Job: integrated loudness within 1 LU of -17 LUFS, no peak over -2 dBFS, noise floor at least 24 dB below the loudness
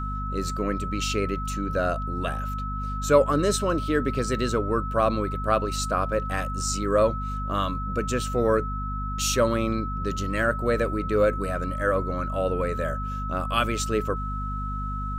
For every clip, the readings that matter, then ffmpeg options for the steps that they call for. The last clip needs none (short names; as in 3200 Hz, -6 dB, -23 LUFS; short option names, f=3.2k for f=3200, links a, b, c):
hum 50 Hz; harmonics up to 250 Hz; hum level -29 dBFS; steady tone 1300 Hz; tone level -32 dBFS; loudness -26.0 LUFS; peak -6.5 dBFS; loudness target -17.0 LUFS
-> -af "bandreject=f=50:t=h:w=6,bandreject=f=100:t=h:w=6,bandreject=f=150:t=h:w=6,bandreject=f=200:t=h:w=6,bandreject=f=250:t=h:w=6"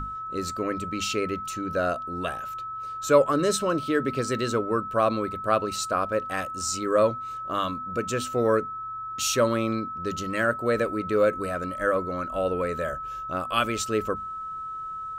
hum none; steady tone 1300 Hz; tone level -32 dBFS
-> -af "bandreject=f=1.3k:w=30"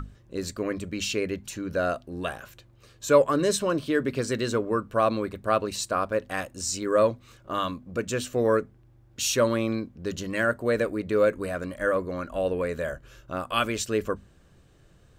steady tone none; loudness -27.0 LUFS; peak -7.0 dBFS; loudness target -17.0 LUFS
-> -af "volume=10dB,alimiter=limit=-2dB:level=0:latency=1"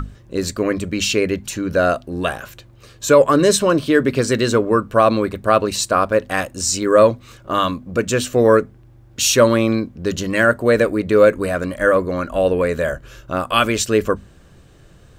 loudness -17.5 LUFS; peak -2.0 dBFS; noise floor -47 dBFS